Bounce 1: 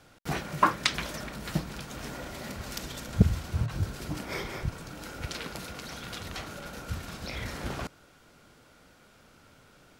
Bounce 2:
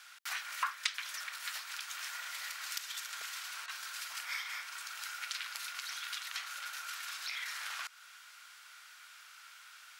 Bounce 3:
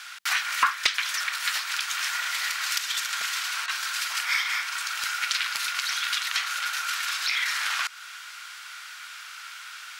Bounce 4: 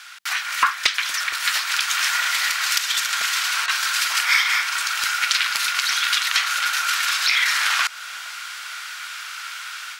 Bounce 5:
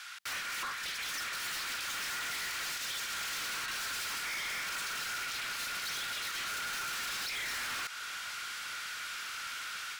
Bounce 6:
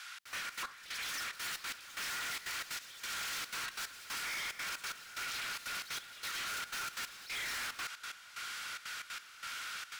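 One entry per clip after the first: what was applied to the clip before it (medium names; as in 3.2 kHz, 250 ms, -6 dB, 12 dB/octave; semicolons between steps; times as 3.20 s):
high-pass 1.3 kHz 24 dB/octave; compression 2:1, threshold -50 dBFS, peak gain reduction 16 dB; trim +7.5 dB
resonant low shelf 290 Hz +11.5 dB, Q 1.5; overdrive pedal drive 15 dB, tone 6.7 kHz, clips at -9 dBFS; trim +5 dB
level rider gain up to 8 dB; bucket-brigade echo 466 ms, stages 2048, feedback 58%, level -11.5 dB
peak limiter -13.5 dBFS, peak gain reduction 11 dB; saturation -31 dBFS, distortion -6 dB; trim -4.5 dB
trance gate "xxx.xx.x...xx" 183 bpm -12 dB; trim -2 dB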